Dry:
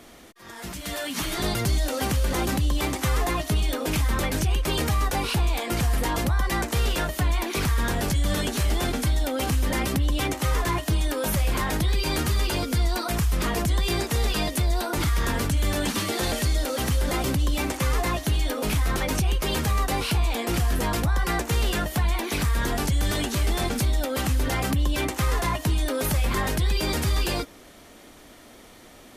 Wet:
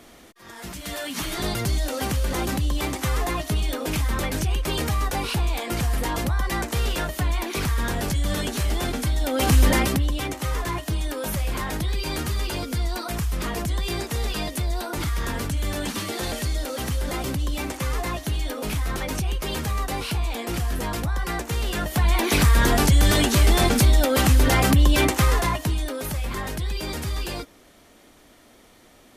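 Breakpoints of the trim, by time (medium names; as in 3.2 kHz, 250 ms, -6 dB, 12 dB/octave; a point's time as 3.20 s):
9.16 s -0.5 dB
9.61 s +8.5 dB
10.20 s -2.5 dB
21.67 s -2.5 dB
22.27 s +7 dB
25.09 s +7 dB
26.01 s -4.5 dB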